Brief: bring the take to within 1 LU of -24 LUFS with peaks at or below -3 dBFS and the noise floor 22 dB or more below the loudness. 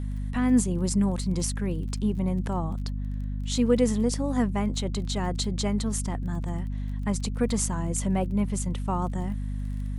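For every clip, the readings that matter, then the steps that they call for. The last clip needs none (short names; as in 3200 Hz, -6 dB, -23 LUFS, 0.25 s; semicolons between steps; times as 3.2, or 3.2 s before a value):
ticks 22/s; hum 50 Hz; harmonics up to 250 Hz; hum level -28 dBFS; loudness -27.5 LUFS; peak -9.5 dBFS; loudness target -24.0 LUFS
-> de-click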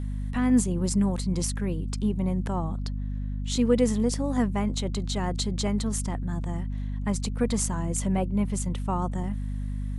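ticks 0/s; hum 50 Hz; harmonics up to 250 Hz; hum level -28 dBFS
-> notches 50/100/150/200/250 Hz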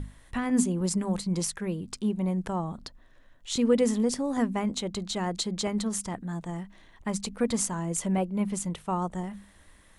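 hum none; loudness -29.5 LUFS; peak -11.5 dBFS; loudness target -24.0 LUFS
-> gain +5.5 dB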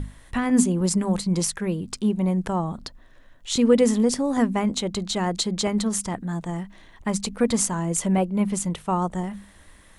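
loudness -24.0 LUFS; peak -6.0 dBFS; noise floor -51 dBFS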